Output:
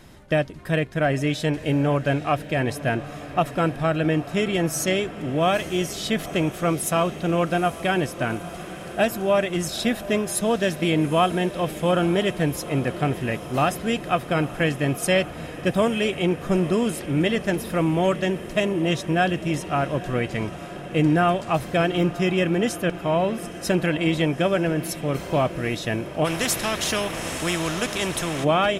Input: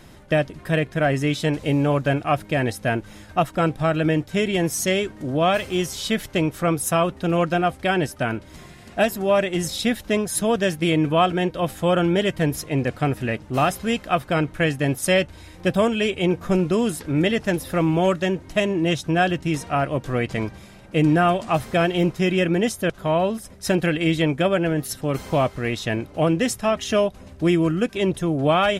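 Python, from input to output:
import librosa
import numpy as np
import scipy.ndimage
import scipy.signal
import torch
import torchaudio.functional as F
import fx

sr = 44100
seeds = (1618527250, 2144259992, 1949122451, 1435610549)

y = fx.echo_diffused(x, sr, ms=882, feedback_pct=74, wet_db=-15.5)
y = fx.spectral_comp(y, sr, ratio=2.0, at=(26.24, 28.43), fade=0.02)
y = y * 10.0 ** (-1.5 / 20.0)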